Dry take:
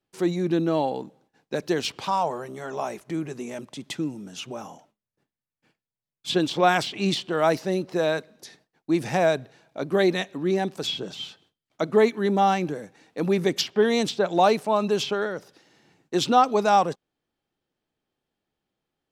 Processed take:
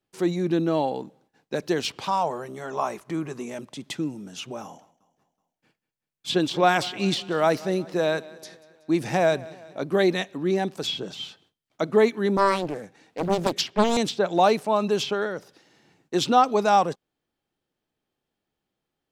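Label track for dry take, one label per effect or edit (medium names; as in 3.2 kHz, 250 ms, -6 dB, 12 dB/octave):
2.750000	3.450000	peaking EQ 1.1 kHz +8.5 dB 0.57 oct
4.630000	9.810000	feedback delay 187 ms, feedback 55%, level -20.5 dB
12.370000	13.970000	loudspeaker Doppler distortion depth 0.94 ms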